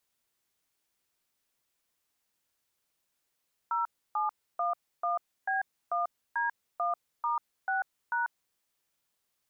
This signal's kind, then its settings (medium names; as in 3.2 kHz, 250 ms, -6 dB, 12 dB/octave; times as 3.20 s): DTMF "0711B1D1*6#", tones 142 ms, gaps 299 ms, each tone -29.5 dBFS